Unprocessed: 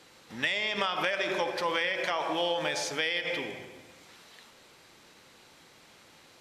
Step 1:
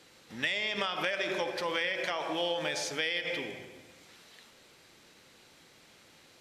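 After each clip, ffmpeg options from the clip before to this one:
-af "equalizer=f=980:w=1.5:g=-4,volume=-1.5dB"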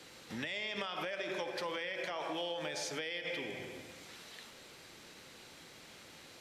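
-filter_complex "[0:a]acrossover=split=370|950[a][b][c];[c]alimiter=level_in=0.5dB:limit=-24dB:level=0:latency=1:release=158,volume=-0.5dB[d];[a][b][d]amix=inputs=3:normalize=0,acompressor=threshold=-43dB:ratio=3,volume=4dB"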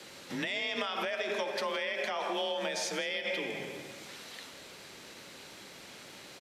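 -af "afreqshift=35,aecho=1:1:166:0.15,volume=5dB"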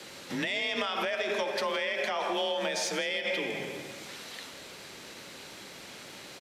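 -af "asoftclip=type=tanh:threshold=-22dB,volume=3.5dB"

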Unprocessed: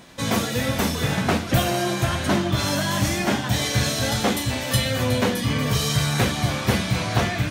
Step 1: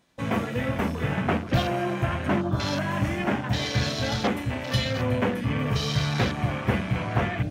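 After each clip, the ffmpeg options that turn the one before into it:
-af "afwtdn=0.0355,volume=-3dB"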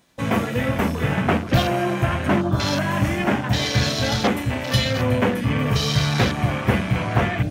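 -af "highshelf=f=7.6k:g=6.5,volume=5dB"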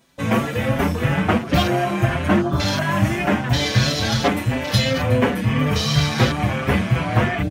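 -filter_complex "[0:a]asplit=2[a][b];[b]adelay=5.8,afreqshift=2.9[c];[a][c]amix=inputs=2:normalize=1,volume=4.5dB"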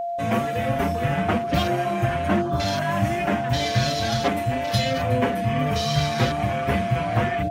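-af "aeval=exprs='val(0)+0.1*sin(2*PI*690*n/s)':c=same,volume=-5dB"

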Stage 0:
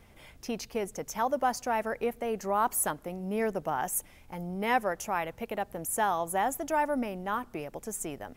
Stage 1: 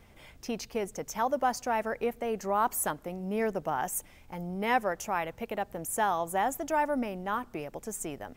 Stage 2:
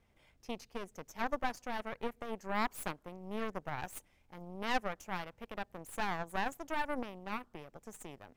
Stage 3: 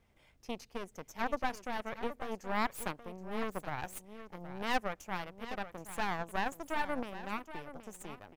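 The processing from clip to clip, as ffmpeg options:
-af "equalizer=f=11k:w=6.2:g=-9"
-af "highshelf=f=12k:g=-7.5,aeval=exprs='0.188*(cos(1*acos(clip(val(0)/0.188,-1,1)))-cos(1*PI/2))+0.0668*(cos(4*acos(clip(val(0)/0.188,-1,1)))-cos(4*PI/2))+0.0133*(cos(7*acos(clip(val(0)/0.188,-1,1)))-cos(7*PI/2))':c=same,volume=-8.5dB"
-af "aecho=1:1:773:0.237,volume=1dB"

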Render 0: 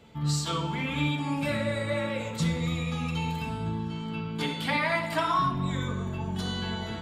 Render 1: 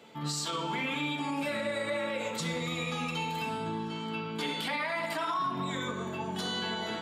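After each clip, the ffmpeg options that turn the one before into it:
-af "highpass=280,alimiter=level_in=3dB:limit=-24dB:level=0:latency=1:release=96,volume=-3dB,volume=3dB"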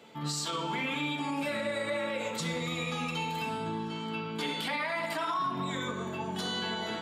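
-af anull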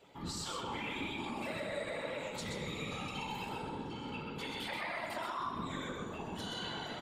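-af "afftfilt=real='hypot(re,im)*cos(2*PI*random(0))':imag='hypot(re,im)*sin(2*PI*random(1))':win_size=512:overlap=0.75,aecho=1:1:128:0.562,volume=-2dB"

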